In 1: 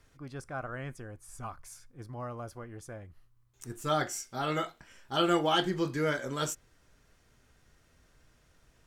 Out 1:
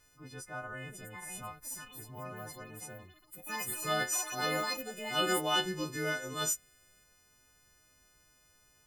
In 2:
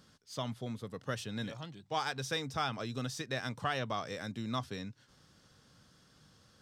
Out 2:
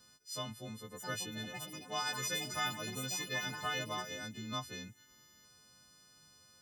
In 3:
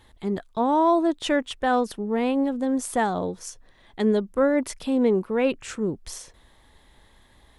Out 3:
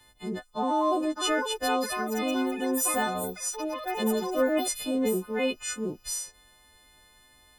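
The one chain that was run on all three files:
every partial snapped to a pitch grid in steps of 3 semitones
delay with pitch and tempo change per echo 772 ms, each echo +6 semitones, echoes 3, each echo −6 dB
level −5.5 dB

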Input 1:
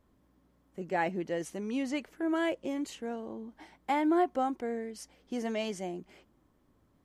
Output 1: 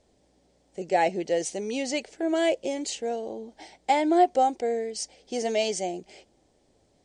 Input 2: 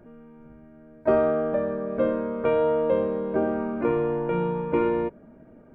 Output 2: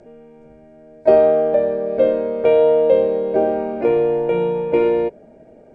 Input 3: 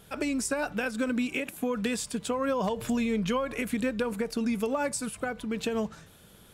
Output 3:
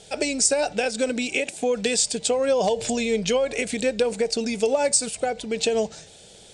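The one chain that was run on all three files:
drawn EQ curve 280 Hz 0 dB, 430 Hz +9 dB, 790 Hz +10 dB, 1,100 Hz −7 dB, 2,200 Hz +7 dB, 3,200 Hz +9 dB, 4,600 Hz +15 dB, 8,900 Hz +14 dB, 13,000 Hz −29 dB

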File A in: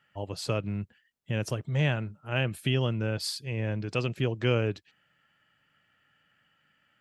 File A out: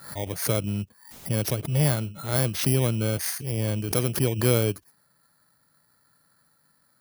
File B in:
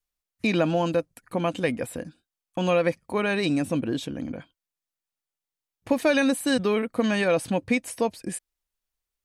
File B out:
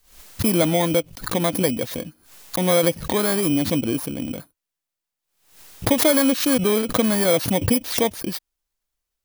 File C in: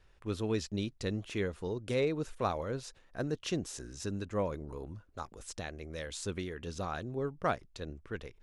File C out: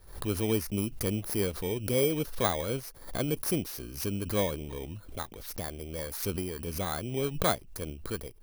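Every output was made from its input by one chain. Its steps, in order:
samples in bit-reversed order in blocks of 16 samples
background raised ahead of every attack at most 100 dB per second
level +4 dB

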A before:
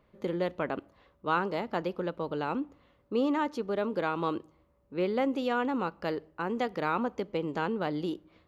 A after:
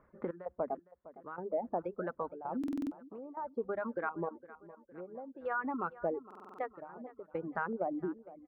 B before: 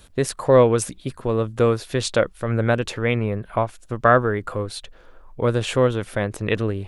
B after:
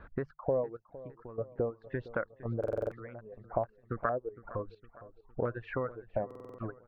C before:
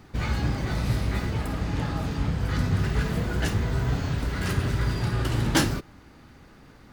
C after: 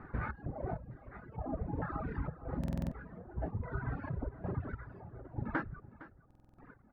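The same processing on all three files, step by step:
reverb reduction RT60 1.2 s
mains-hum notches 50/100/150/200 Hz
reverb reduction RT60 1.3 s
parametric band 3,100 Hz −7.5 dB 0.42 octaves
downward compressor 5 to 1, threshold −34 dBFS
gate pattern "xx.xx....xxxx" 98 BPM −12 dB
auto-filter low-pass square 1.1 Hz 700–1,500 Hz
high-frequency loss of the air 240 metres
repeating echo 460 ms, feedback 50%, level −17.5 dB
buffer that repeats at 0:02.59/0:06.26, samples 2,048, times 6

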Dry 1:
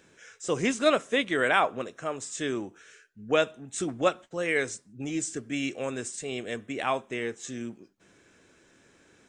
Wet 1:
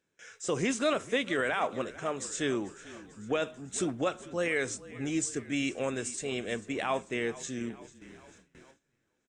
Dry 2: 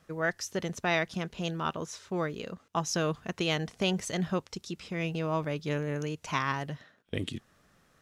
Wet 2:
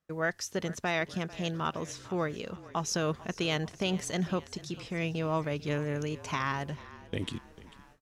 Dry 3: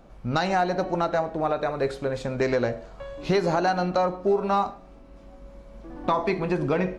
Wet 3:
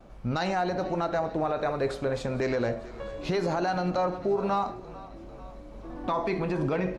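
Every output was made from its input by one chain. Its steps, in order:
brickwall limiter −19 dBFS
echo with shifted repeats 444 ms, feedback 62%, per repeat −33 Hz, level −18.5 dB
noise gate with hold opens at −44 dBFS

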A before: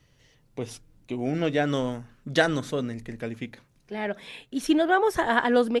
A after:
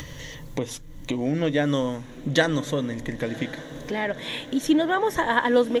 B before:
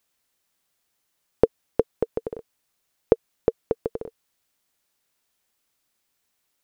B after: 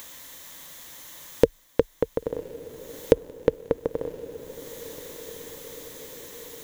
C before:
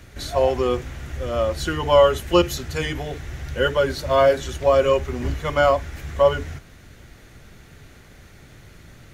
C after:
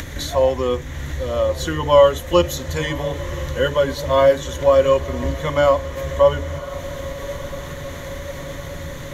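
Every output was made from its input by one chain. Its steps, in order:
EQ curve with evenly spaced ripples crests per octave 1.1, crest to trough 7 dB
upward compression, threshold −20 dBFS
feedback delay with all-pass diffusion 1,072 ms, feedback 68%, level −15.5 dB

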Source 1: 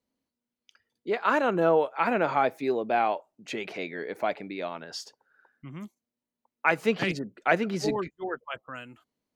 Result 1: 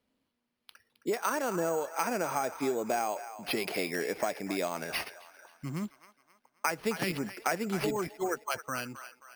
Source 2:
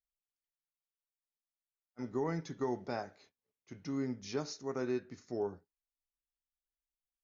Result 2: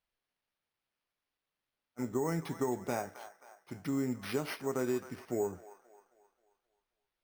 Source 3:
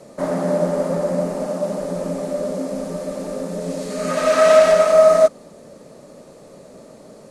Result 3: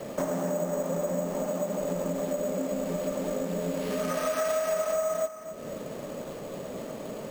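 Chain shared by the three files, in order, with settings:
downward compressor 6 to 1, threshold −33 dBFS
on a send: delay with a band-pass on its return 266 ms, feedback 44%, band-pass 1,400 Hz, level −10.5 dB
on the sum: bad sample-rate conversion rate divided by 6×, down none, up hold
level +5 dB

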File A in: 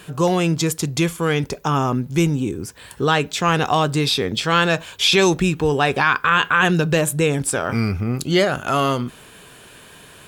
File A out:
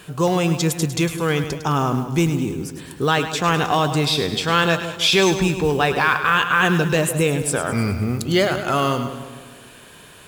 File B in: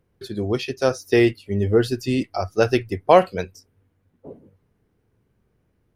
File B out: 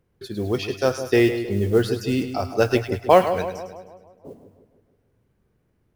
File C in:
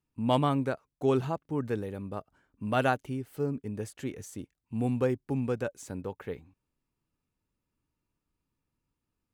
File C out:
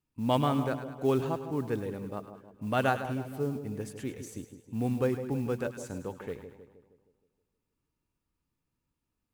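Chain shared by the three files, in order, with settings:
noise that follows the level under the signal 29 dB
echo with a time of its own for lows and highs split 1,000 Hz, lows 157 ms, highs 104 ms, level −10 dB
level −1 dB

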